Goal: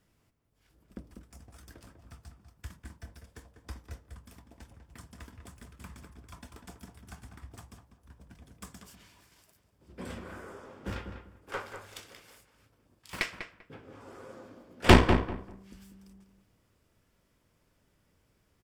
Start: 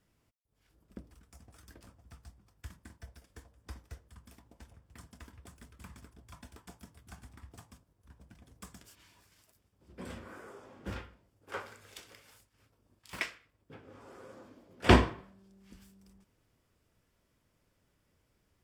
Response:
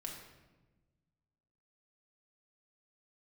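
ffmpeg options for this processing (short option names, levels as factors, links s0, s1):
-filter_complex "[0:a]aeval=exprs='0.531*(cos(1*acos(clip(val(0)/0.531,-1,1)))-cos(1*PI/2))+0.0596*(cos(8*acos(clip(val(0)/0.531,-1,1)))-cos(8*PI/2))':c=same,asplit=2[s0][s1];[s1]adelay=196,lowpass=f=1900:p=1,volume=0.447,asplit=2[s2][s3];[s3]adelay=196,lowpass=f=1900:p=1,volume=0.22,asplit=2[s4][s5];[s5]adelay=196,lowpass=f=1900:p=1,volume=0.22[s6];[s0][s2][s4][s6]amix=inputs=4:normalize=0,volume=1.41"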